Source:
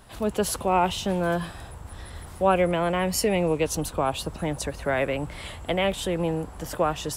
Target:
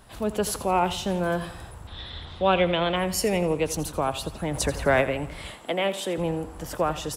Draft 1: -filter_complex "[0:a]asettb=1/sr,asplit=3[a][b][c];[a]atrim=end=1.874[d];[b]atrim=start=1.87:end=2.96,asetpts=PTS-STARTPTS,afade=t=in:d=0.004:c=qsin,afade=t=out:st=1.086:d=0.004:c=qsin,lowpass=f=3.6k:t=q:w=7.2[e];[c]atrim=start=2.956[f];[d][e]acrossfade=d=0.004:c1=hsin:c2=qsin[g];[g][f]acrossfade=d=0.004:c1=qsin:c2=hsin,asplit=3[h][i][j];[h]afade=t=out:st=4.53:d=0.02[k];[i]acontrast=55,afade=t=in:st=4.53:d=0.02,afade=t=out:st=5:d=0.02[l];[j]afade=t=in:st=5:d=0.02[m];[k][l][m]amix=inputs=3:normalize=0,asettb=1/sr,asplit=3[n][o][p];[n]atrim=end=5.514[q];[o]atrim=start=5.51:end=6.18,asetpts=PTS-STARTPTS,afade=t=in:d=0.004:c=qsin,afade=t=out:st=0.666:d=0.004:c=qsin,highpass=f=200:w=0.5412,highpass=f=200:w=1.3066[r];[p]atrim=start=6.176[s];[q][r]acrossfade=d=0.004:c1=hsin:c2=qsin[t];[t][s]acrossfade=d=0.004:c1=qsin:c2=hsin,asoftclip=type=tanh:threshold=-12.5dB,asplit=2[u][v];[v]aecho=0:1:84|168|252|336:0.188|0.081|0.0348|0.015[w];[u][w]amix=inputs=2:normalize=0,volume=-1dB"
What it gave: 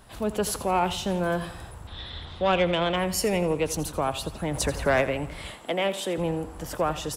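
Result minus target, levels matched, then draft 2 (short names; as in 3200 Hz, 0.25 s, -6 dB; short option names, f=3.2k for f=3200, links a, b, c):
soft clip: distortion +16 dB
-filter_complex "[0:a]asettb=1/sr,asplit=3[a][b][c];[a]atrim=end=1.874[d];[b]atrim=start=1.87:end=2.96,asetpts=PTS-STARTPTS,afade=t=in:d=0.004:c=qsin,afade=t=out:st=1.086:d=0.004:c=qsin,lowpass=f=3.6k:t=q:w=7.2[e];[c]atrim=start=2.956[f];[d][e]acrossfade=d=0.004:c1=hsin:c2=qsin[g];[g][f]acrossfade=d=0.004:c1=qsin:c2=hsin,asplit=3[h][i][j];[h]afade=t=out:st=4.53:d=0.02[k];[i]acontrast=55,afade=t=in:st=4.53:d=0.02,afade=t=out:st=5:d=0.02[l];[j]afade=t=in:st=5:d=0.02[m];[k][l][m]amix=inputs=3:normalize=0,asettb=1/sr,asplit=3[n][o][p];[n]atrim=end=5.514[q];[o]atrim=start=5.51:end=6.18,asetpts=PTS-STARTPTS,afade=t=in:d=0.004:c=qsin,afade=t=out:st=0.666:d=0.004:c=qsin,highpass=f=200:w=0.5412,highpass=f=200:w=1.3066[r];[p]atrim=start=6.176[s];[q][r]acrossfade=d=0.004:c1=hsin:c2=qsin[t];[t][s]acrossfade=d=0.004:c1=qsin:c2=hsin,asoftclip=type=tanh:threshold=-3dB,asplit=2[u][v];[v]aecho=0:1:84|168|252|336:0.188|0.081|0.0348|0.015[w];[u][w]amix=inputs=2:normalize=0,volume=-1dB"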